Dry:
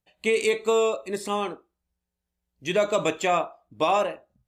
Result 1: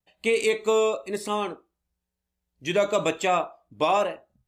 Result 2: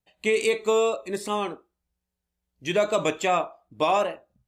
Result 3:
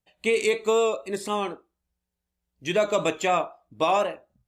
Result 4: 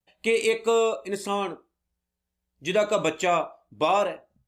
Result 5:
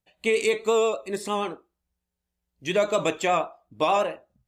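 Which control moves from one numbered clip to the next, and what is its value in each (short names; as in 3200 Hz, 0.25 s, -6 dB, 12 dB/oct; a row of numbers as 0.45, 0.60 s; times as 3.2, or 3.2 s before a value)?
vibrato, rate: 1, 2.5, 4, 0.49, 8.5 Hz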